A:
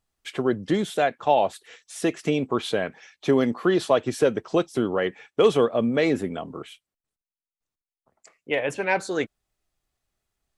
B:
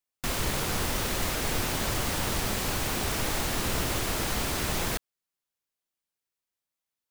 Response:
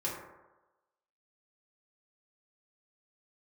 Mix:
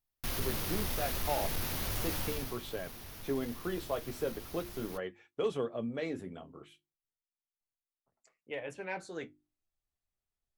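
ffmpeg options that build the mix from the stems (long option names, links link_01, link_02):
-filter_complex "[0:a]bandreject=frequency=50:width_type=h:width=6,bandreject=frequency=100:width_type=h:width=6,bandreject=frequency=150:width_type=h:width=6,bandreject=frequency=200:width_type=h:width=6,bandreject=frequency=250:width_type=h:width=6,bandreject=frequency=300:width_type=h:width=6,bandreject=frequency=350:width_type=h:width=6,volume=-11.5dB[link_01];[1:a]equalizer=frequency=7800:width_type=o:width=0.41:gain=-13.5,asoftclip=type=tanh:threshold=-26dB,aemphasis=mode=production:type=cd,volume=-3.5dB,afade=type=out:start_time=2.19:duration=0.4:silence=0.251189[link_02];[link_01][link_02]amix=inputs=2:normalize=0,lowshelf=frequency=130:gain=7,flanger=delay=6.9:depth=7.1:regen=-53:speed=0.37:shape=triangular"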